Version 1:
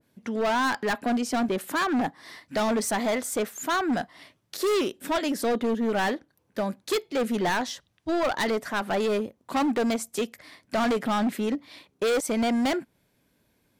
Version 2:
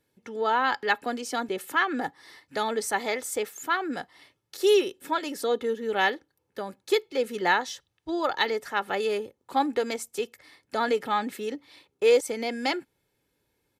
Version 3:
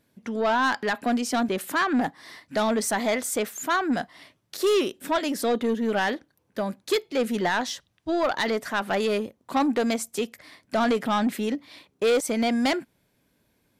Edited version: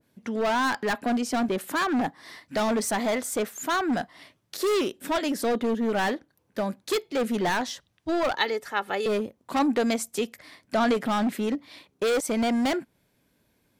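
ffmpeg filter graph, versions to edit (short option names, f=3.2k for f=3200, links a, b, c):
-filter_complex "[0:a]asplit=3[a][b][c];[a]atrim=end=8.362[d];[1:a]atrim=start=8.358:end=9.062[e];[b]atrim=start=9.058:end=9.592[f];[2:a]atrim=start=9.588:end=10.942[g];[c]atrim=start=10.938[h];[d][e]acrossfade=d=0.004:c1=hsin:c2=hsin[i];[i][f]acrossfade=d=0.004:c1=hsin:c2=hsin[j];[j][g]acrossfade=d=0.004:c1=hsin:c2=hsin[k];[k][h]acrossfade=d=0.004:c1=hsin:c2=hsin"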